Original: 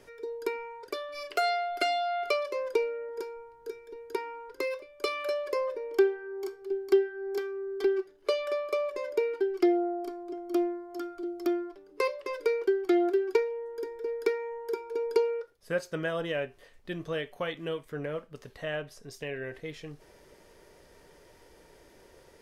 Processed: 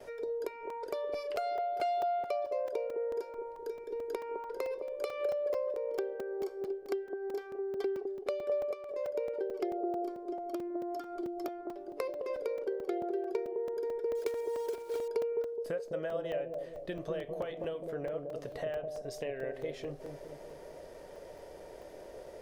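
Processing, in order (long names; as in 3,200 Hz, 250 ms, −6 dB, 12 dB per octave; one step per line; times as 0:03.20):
0:14.15–0:15.08: one scale factor per block 3 bits
noise gate with hold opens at −51 dBFS
parametric band 610 Hz +13 dB 0.83 octaves
downward compressor 5 to 1, threshold −36 dBFS, peak gain reduction 21 dB
bucket-brigade delay 209 ms, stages 1,024, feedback 54%, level −4 dB
regular buffer underruns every 0.22 s, samples 128, zero, from 0:00.70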